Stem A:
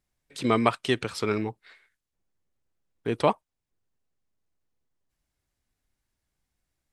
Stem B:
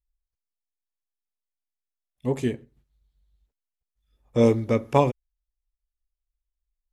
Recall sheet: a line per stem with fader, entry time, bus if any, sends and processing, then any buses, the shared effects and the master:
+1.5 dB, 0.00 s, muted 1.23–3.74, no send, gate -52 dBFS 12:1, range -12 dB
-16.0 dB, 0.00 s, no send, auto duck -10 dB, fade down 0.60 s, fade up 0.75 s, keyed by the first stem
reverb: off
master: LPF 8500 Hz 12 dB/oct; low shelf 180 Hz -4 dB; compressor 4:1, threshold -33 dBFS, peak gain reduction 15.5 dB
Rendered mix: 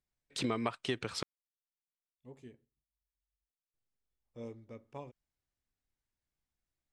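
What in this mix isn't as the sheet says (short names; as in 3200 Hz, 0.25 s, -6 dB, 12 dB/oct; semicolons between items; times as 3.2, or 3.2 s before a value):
stem B -16.0 dB -> -27.0 dB; master: missing low shelf 180 Hz -4 dB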